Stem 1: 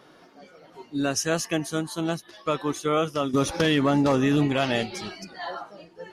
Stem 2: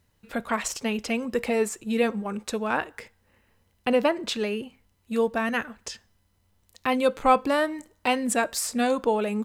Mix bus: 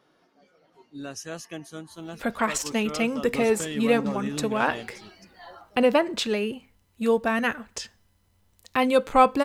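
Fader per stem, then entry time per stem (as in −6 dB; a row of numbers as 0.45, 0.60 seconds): −11.5, +2.0 decibels; 0.00, 1.90 seconds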